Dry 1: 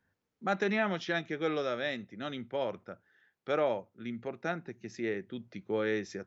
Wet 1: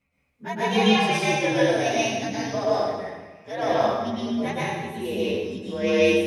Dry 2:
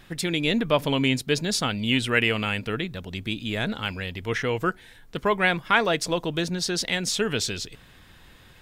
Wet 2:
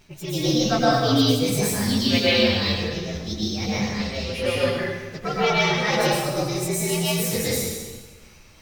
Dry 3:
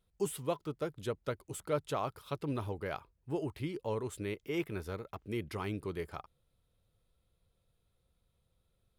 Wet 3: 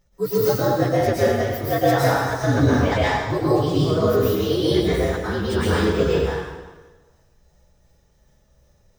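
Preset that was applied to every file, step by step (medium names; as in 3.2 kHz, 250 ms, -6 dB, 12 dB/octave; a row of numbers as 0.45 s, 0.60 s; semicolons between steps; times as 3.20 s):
frequency axis rescaled in octaves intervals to 118%; tremolo 2.7 Hz, depth 58%; plate-style reverb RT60 1.3 s, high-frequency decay 0.85×, pre-delay 100 ms, DRR -7.5 dB; peak normalisation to -6 dBFS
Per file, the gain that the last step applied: +7.5 dB, +0.5 dB, +16.5 dB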